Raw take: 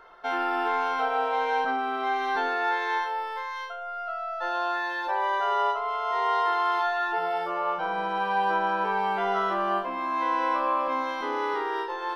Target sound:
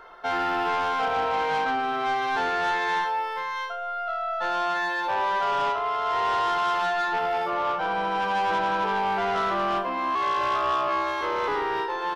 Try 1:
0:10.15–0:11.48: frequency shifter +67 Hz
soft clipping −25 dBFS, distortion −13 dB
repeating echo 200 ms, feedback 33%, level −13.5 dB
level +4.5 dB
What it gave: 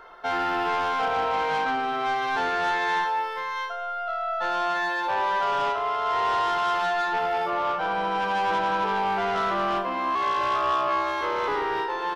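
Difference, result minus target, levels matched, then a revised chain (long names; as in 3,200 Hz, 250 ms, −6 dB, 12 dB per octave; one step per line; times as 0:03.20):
echo-to-direct +7.5 dB
0:10.15–0:11.48: frequency shifter +67 Hz
soft clipping −25 dBFS, distortion −13 dB
repeating echo 200 ms, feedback 33%, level −21 dB
level +4.5 dB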